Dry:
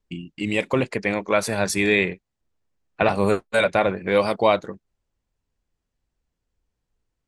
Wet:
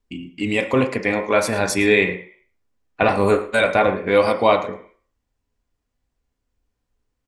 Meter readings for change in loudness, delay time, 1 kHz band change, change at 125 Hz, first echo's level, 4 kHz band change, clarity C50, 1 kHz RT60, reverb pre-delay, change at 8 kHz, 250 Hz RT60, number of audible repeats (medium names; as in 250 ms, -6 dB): +3.0 dB, 111 ms, +3.5 dB, +1.5 dB, -17.5 dB, +2.0 dB, 10.0 dB, 0.50 s, 3 ms, +1.5 dB, 0.45 s, 1